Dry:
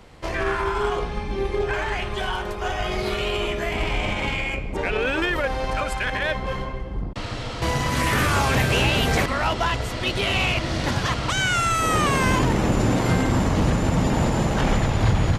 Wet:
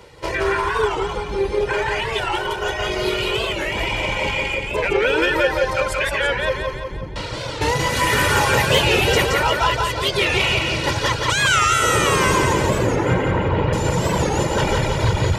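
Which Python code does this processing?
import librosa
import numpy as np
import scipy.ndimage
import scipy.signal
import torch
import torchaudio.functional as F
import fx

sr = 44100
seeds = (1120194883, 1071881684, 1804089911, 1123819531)

y = fx.lowpass(x, sr, hz=2900.0, slope=24, at=(12.79, 13.73))
y = fx.dereverb_blind(y, sr, rt60_s=1.3)
y = fx.highpass(y, sr, hz=140.0, slope=6)
y = fx.peak_eq(y, sr, hz=1300.0, db=-2.5, octaves=0.77)
y = y + 0.59 * np.pad(y, (int(2.1 * sr / 1000.0), 0))[:len(y)]
y = fx.echo_feedback(y, sr, ms=173, feedback_pct=49, wet_db=-3.0)
y = fx.record_warp(y, sr, rpm=45.0, depth_cents=160.0)
y = y * 10.0 ** (4.5 / 20.0)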